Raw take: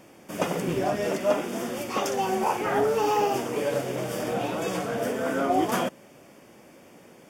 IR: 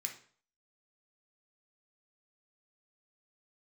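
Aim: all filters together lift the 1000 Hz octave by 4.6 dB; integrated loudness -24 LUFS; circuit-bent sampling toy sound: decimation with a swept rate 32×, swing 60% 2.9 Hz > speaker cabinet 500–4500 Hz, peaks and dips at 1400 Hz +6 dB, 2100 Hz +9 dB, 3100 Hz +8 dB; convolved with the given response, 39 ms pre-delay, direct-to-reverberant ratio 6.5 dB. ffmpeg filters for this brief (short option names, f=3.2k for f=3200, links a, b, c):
-filter_complex "[0:a]equalizer=f=1k:t=o:g=5.5,asplit=2[a][b];[1:a]atrim=start_sample=2205,adelay=39[c];[b][c]afir=irnorm=-1:irlink=0,volume=-5.5dB[d];[a][d]amix=inputs=2:normalize=0,acrusher=samples=32:mix=1:aa=0.000001:lfo=1:lforange=19.2:lforate=2.9,highpass=500,equalizer=f=1.4k:t=q:w=4:g=6,equalizer=f=2.1k:t=q:w=4:g=9,equalizer=f=3.1k:t=q:w=4:g=8,lowpass=f=4.5k:w=0.5412,lowpass=f=4.5k:w=1.3066,volume=-0.5dB"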